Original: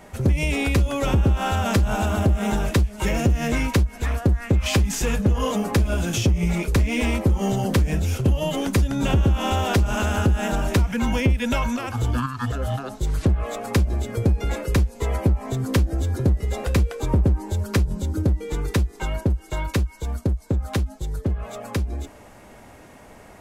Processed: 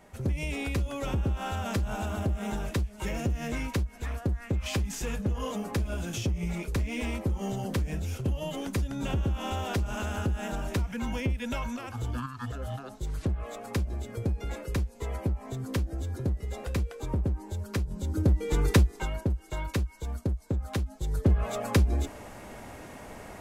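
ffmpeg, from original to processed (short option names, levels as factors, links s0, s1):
-af "volume=3.35,afade=t=in:st=17.9:d=0.81:silence=0.266073,afade=t=out:st=18.71:d=0.4:silence=0.375837,afade=t=in:st=20.91:d=0.44:silence=0.354813"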